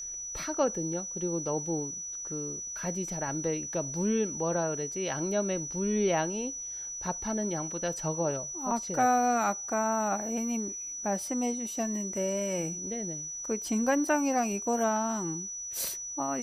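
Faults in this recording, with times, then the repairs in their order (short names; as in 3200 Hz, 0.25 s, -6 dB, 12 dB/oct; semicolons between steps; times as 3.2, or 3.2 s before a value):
tone 5900 Hz -36 dBFS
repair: notch 5900 Hz, Q 30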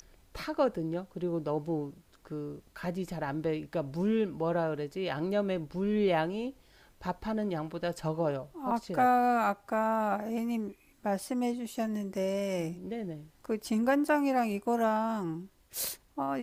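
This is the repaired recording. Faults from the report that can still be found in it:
none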